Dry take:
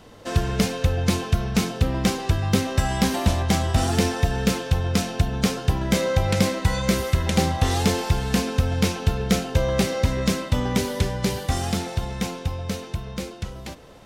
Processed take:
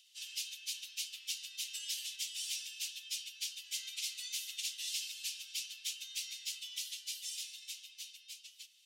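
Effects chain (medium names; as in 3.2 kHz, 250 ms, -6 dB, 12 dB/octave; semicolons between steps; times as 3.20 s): Chebyshev high-pass 2.8 kHz, order 4; plain phase-vocoder stretch 0.63×; trim -3.5 dB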